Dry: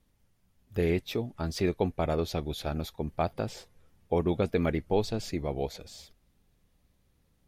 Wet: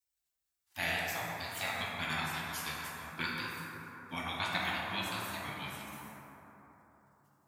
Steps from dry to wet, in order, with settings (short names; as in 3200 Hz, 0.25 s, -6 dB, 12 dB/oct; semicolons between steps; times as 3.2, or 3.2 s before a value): HPF 500 Hz 12 dB/oct; spectral gate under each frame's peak -20 dB weak; plate-style reverb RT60 3.9 s, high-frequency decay 0.3×, DRR -5 dB; gain +7.5 dB